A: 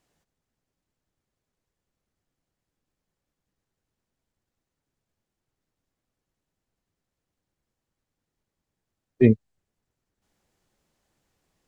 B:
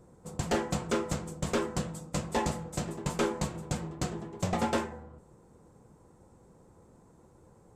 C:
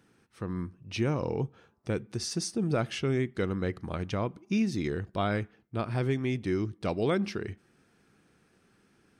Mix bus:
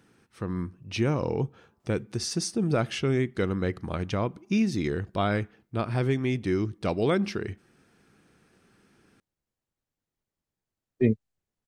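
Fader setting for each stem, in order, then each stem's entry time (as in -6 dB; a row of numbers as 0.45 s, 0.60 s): -6.0 dB, mute, +3.0 dB; 1.80 s, mute, 0.00 s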